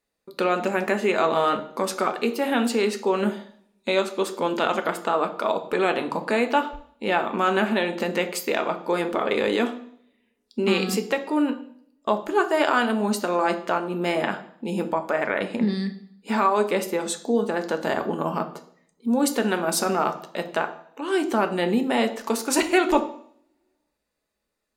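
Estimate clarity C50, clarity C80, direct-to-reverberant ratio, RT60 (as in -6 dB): 12.5 dB, 16.0 dB, 6.5 dB, 0.60 s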